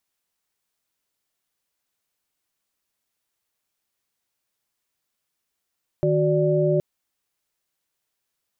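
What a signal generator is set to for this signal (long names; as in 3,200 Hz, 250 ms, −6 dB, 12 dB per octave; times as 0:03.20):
held notes D#3/F#4/D5 sine, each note −21.5 dBFS 0.77 s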